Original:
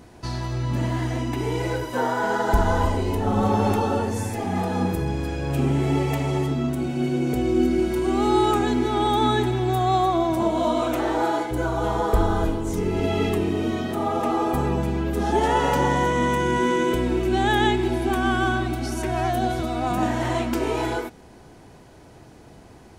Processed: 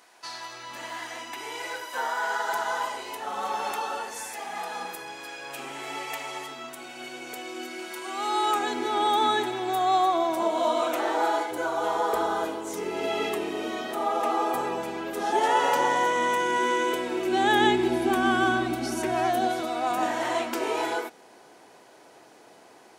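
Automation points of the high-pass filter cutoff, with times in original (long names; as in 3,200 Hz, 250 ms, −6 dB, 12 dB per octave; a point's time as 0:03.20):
0:08.15 1,000 Hz
0:08.83 500 Hz
0:17.10 500 Hz
0:17.68 210 Hz
0:19.02 210 Hz
0:19.81 460 Hz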